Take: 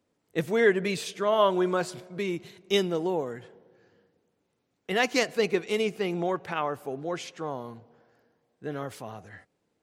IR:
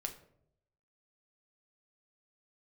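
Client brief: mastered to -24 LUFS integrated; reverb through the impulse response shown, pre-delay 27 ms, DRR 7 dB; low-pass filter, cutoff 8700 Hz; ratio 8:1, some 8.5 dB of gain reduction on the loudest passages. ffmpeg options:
-filter_complex "[0:a]lowpass=8.7k,acompressor=threshold=-25dB:ratio=8,asplit=2[a][b];[1:a]atrim=start_sample=2205,adelay=27[c];[b][c]afir=irnorm=-1:irlink=0,volume=-6dB[d];[a][d]amix=inputs=2:normalize=0,volume=7.5dB"

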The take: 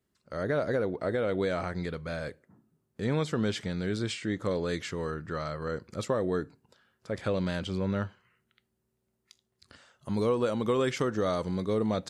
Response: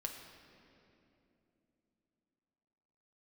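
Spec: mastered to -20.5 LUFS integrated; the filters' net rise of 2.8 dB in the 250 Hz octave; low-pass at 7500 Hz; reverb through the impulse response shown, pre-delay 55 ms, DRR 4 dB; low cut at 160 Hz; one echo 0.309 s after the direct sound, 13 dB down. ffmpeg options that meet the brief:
-filter_complex "[0:a]highpass=160,lowpass=7.5k,equalizer=f=250:t=o:g=5,aecho=1:1:309:0.224,asplit=2[a][b];[1:a]atrim=start_sample=2205,adelay=55[c];[b][c]afir=irnorm=-1:irlink=0,volume=-3dB[d];[a][d]amix=inputs=2:normalize=0,volume=8dB"

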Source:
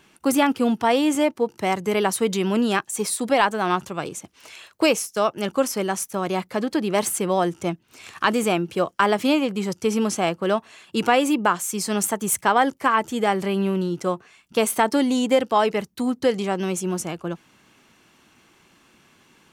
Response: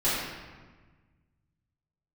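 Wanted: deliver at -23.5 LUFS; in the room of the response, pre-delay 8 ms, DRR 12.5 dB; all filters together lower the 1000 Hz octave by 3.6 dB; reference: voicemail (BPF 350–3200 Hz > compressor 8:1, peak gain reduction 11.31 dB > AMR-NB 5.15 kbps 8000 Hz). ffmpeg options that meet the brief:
-filter_complex "[0:a]equalizer=f=1k:t=o:g=-4.5,asplit=2[a][b];[1:a]atrim=start_sample=2205,adelay=8[c];[b][c]afir=irnorm=-1:irlink=0,volume=-25.5dB[d];[a][d]amix=inputs=2:normalize=0,highpass=350,lowpass=3.2k,acompressor=threshold=-26dB:ratio=8,volume=9.5dB" -ar 8000 -c:a libopencore_amrnb -b:a 5150

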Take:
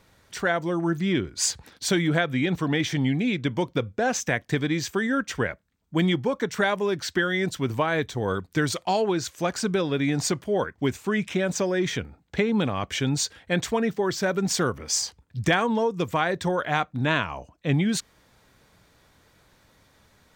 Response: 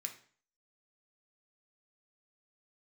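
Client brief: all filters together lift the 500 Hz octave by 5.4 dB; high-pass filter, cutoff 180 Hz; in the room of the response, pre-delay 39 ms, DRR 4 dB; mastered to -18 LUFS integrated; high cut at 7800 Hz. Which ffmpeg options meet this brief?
-filter_complex "[0:a]highpass=180,lowpass=7.8k,equalizer=f=500:t=o:g=7,asplit=2[a][b];[1:a]atrim=start_sample=2205,adelay=39[c];[b][c]afir=irnorm=-1:irlink=0,volume=-1.5dB[d];[a][d]amix=inputs=2:normalize=0,volume=4.5dB"

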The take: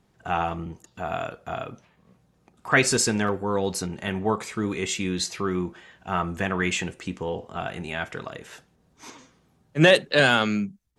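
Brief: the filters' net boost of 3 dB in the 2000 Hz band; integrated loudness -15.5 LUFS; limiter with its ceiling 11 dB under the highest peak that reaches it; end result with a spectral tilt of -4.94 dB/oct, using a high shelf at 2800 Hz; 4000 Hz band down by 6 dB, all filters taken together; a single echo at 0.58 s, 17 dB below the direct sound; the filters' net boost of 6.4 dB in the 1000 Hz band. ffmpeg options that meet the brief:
-af "equalizer=f=1k:t=o:g=9,equalizer=f=2k:t=o:g=3.5,highshelf=f=2.8k:g=-5.5,equalizer=f=4k:t=o:g=-5.5,alimiter=limit=-13dB:level=0:latency=1,aecho=1:1:580:0.141,volume=11.5dB"

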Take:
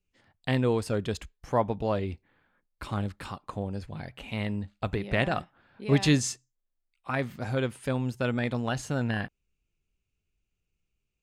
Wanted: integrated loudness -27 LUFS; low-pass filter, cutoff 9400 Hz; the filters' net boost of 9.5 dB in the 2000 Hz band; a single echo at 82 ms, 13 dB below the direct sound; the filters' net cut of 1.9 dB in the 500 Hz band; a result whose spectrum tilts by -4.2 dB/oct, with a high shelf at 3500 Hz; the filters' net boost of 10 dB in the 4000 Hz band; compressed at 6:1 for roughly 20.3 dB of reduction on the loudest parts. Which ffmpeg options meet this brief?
-af "lowpass=9.4k,equalizer=f=500:t=o:g=-3,equalizer=f=2k:t=o:g=9,highshelf=f=3.5k:g=4,equalizer=f=4k:t=o:g=7,acompressor=threshold=-38dB:ratio=6,aecho=1:1:82:0.224,volume=14.5dB"

